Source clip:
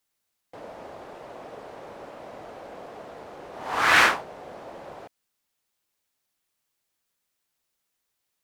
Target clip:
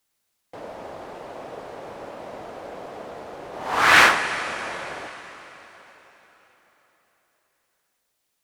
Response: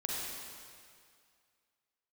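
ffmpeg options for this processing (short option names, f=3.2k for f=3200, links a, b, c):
-filter_complex "[0:a]asplit=2[a][b];[1:a]atrim=start_sample=2205,asetrate=22491,aresample=44100,highshelf=f=8.5k:g=5.5[c];[b][c]afir=irnorm=-1:irlink=0,volume=-17dB[d];[a][d]amix=inputs=2:normalize=0,volume=2.5dB"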